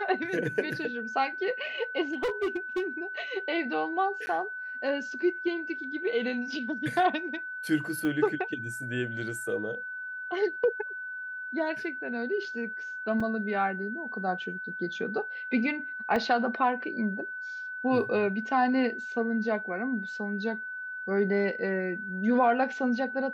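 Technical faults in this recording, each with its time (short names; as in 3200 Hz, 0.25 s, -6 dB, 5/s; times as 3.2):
tone 1500 Hz -35 dBFS
2.13–2.83 clipped -25 dBFS
4.26–4.27 gap 10 ms
8.05 pop -21 dBFS
13.2 gap 3.9 ms
16.16 gap 2.9 ms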